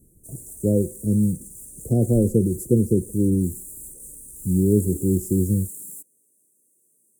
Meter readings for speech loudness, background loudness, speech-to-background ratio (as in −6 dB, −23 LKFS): −22.0 LKFS, −37.0 LKFS, 15.0 dB